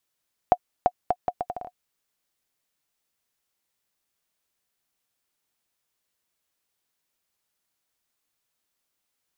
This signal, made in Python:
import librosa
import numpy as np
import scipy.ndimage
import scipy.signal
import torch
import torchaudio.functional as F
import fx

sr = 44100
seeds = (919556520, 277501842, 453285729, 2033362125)

y = fx.bouncing_ball(sr, first_gap_s=0.34, ratio=0.72, hz=721.0, decay_ms=55.0, level_db=-5.0)